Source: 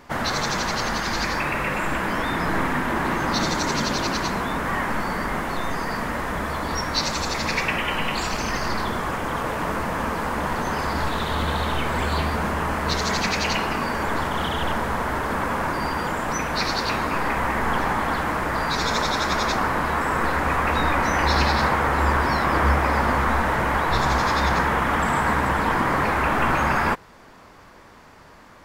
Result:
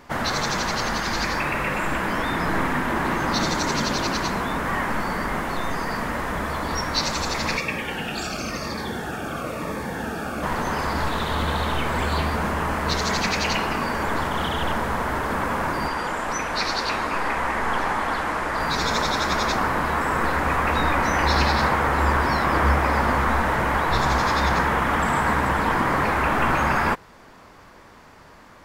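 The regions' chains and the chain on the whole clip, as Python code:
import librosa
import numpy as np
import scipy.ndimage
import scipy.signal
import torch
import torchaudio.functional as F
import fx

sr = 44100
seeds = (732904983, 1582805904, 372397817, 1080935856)

y = fx.chain(x, sr, fx.notch_comb(f0_hz=1000.0),
    fx.notch_cascade(direction='falling', hz=1.0), at=(7.57, 10.43))
y = fx.chain(y, sr, fx.lowpass(hz=11000.0, slope=12),
    fx.peak_eq(hz=110.0, db=-7.5, octaves=2.5), at=(15.88, 18.6))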